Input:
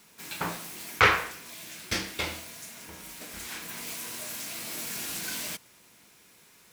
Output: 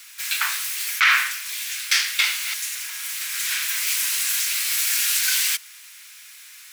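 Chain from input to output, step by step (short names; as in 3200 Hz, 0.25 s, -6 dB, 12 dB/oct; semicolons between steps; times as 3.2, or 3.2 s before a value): 2.24–4.4 reverse delay 0.149 s, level -6 dB; HPF 1500 Hz 24 dB/oct; maximiser +20 dB; gain -5.5 dB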